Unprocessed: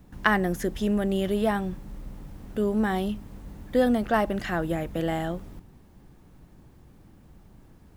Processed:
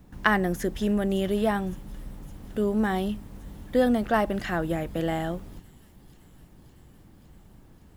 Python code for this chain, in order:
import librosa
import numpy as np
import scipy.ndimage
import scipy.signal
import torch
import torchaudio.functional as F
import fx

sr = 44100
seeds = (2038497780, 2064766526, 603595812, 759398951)

y = fx.echo_wet_highpass(x, sr, ms=561, feedback_pct=74, hz=5400.0, wet_db=-14.5)